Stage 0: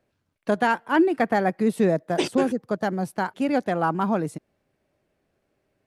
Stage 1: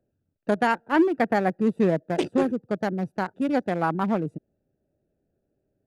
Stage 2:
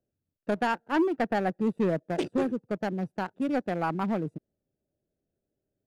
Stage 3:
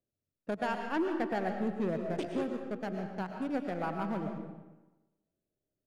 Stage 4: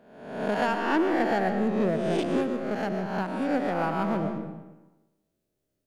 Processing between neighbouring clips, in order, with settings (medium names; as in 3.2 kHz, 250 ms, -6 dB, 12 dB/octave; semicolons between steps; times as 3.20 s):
local Wiener filter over 41 samples
waveshaping leveller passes 1; trim -7 dB
algorithmic reverb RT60 1.1 s, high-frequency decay 0.75×, pre-delay 75 ms, DRR 4 dB; trim -7 dB
reverse spectral sustain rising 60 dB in 0.87 s; trim +5.5 dB